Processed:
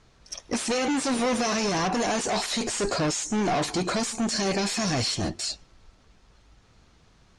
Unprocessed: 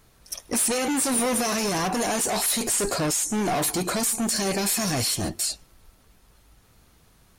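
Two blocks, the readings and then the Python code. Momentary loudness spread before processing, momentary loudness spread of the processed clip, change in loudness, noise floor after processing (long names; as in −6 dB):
5 LU, 6 LU, −2.5 dB, −59 dBFS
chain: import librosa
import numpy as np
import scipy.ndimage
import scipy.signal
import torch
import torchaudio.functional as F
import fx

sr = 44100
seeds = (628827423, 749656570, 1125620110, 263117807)

y = scipy.signal.sosfilt(scipy.signal.butter(4, 6700.0, 'lowpass', fs=sr, output='sos'), x)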